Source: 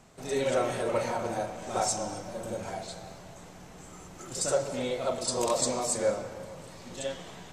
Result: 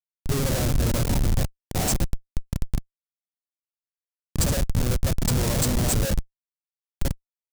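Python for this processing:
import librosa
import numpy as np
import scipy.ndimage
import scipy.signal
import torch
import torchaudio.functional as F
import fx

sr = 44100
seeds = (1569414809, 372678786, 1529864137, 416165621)

y = fx.schmitt(x, sr, flips_db=-27.0)
y = fx.bass_treble(y, sr, bass_db=11, treble_db=11)
y = F.gain(torch.from_numpy(y), 3.5).numpy()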